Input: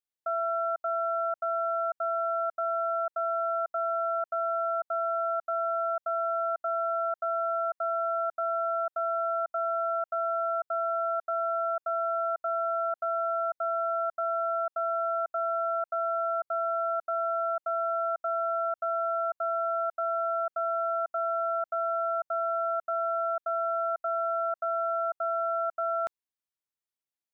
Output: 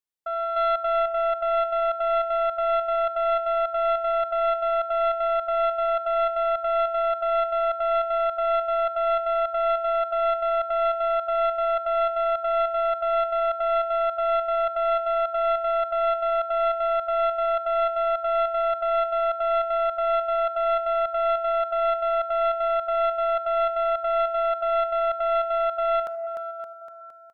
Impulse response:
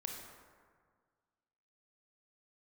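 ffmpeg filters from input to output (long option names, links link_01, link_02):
-filter_complex "[0:a]aecho=1:1:300|570|813|1032|1229:0.631|0.398|0.251|0.158|0.1,asplit=2[link_01][link_02];[1:a]atrim=start_sample=2205[link_03];[link_02][link_03]afir=irnorm=-1:irlink=0,volume=-4dB[link_04];[link_01][link_04]amix=inputs=2:normalize=0,aeval=exprs='0.224*(cos(1*acos(clip(val(0)/0.224,-1,1)))-cos(1*PI/2))+0.0355*(cos(3*acos(clip(val(0)/0.224,-1,1)))-cos(3*PI/2))':channel_layout=same,volume=2dB"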